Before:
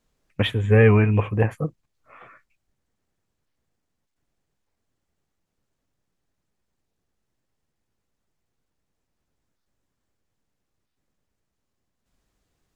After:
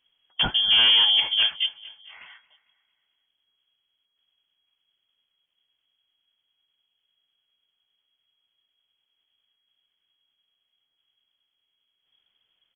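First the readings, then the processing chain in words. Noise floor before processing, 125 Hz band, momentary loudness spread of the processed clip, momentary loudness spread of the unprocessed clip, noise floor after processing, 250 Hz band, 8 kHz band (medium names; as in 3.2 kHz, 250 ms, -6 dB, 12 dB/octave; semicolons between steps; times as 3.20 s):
-79 dBFS, under -25 dB, 13 LU, 16 LU, -78 dBFS, under -20 dB, no reading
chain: overload inside the chain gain 16 dB; frequency inversion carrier 3.3 kHz; on a send: feedback delay 225 ms, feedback 51%, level -20 dB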